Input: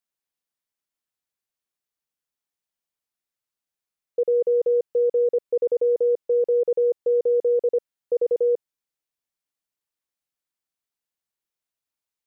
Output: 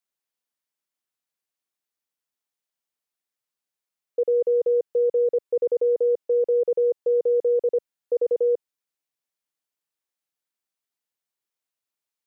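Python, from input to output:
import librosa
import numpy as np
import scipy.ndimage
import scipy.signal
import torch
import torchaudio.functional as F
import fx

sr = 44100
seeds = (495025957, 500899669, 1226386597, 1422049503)

y = fx.highpass(x, sr, hz=170.0, slope=6)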